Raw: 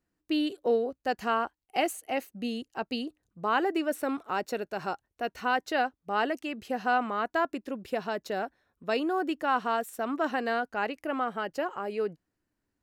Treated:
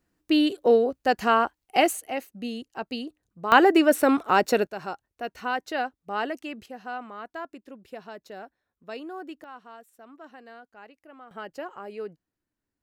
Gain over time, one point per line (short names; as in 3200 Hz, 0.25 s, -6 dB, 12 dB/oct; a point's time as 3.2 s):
+7 dB
from 2.08 s 0 dB
from 3.52 s +10.5 dB
from 4.67 s -1 dB
from 6.66 s -9 dB
from 9.44 s -17.5 dB
from 11.31 s -5 dB